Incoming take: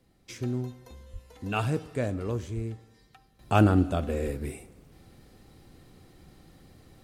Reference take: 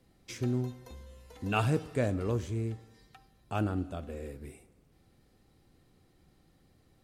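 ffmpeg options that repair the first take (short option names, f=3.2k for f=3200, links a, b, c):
-filter_complex "[0:a]asplit=3[a][b][c];[a]afade=t=out:st=1.12:d=0.02[d];[b]highpass=f=140:w=0.5412,highpass=f=140:w=1.3066,afade=t=in:st=1.12:d=0.02,afade=t=out:st=1.24:d=0.02[e];[c]afade=t=in:st=1.24:d=0.02[f];[d][e][f]amix=inputs=3:normalize=0,asplit=3[g][h][i];[g]afade=t=out:st=2.55:d=0.02[j];[h]highpass=f=140:w=0.5412,highpass=f=140:w=1.3066,afade=t=in:st=2.55:d=0.02,afade=t=out:st=2.67:d=0.02[k];[i]afade=t=in:st=2.67:d=0.02[l];[j][k][l]amix=inputs=3:normalize=0,asplit=3[m][n][o];[m]afade=t=out:st=4.24:d=0.02[p];[n]highpass=f=140:w=0.5412,highpass=f=140:w=1.3066,afade=t=in:st=4.24:d=0.02,afade=t=out:st=4.36:d=0.02[q];[o]afade=t=in:st=4.36:d=0.02[r];[p][q][r]amix=inputs=3:normalize=0,asetnsamples=n=441:p=0,asendcmd='3.39 volume volume -11dB',volume=0dB"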